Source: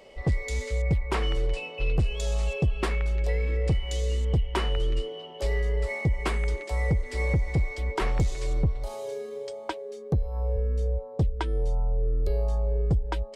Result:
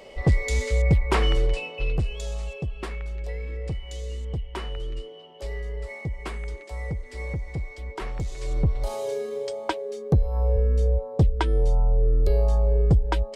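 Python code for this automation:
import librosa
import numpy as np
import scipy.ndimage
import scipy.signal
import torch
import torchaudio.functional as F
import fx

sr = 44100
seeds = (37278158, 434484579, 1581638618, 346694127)

y = fx.gain(x, sr, db=fx.line((1.32, 5.5), (2.55, -6.0), (8.19, -6.0), (8.83, 5.5)))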